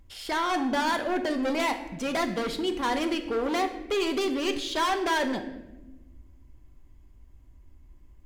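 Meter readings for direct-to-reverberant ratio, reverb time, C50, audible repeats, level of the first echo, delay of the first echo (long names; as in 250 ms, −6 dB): 5.5 dB, 1.1 s, 10.0 dB, no echo audible, no echo audible, no echo audible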